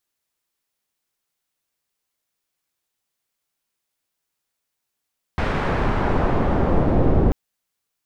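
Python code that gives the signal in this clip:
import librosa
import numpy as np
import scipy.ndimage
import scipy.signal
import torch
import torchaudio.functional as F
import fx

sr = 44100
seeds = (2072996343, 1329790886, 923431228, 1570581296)

y = fx.riser_noise(sr, seeds[0], length_s=1.94, colour='pink', kind='lowpass', start_hz=2000.0, end_hz=470.0, q=0.83, swell_db=8.0, law='exponential')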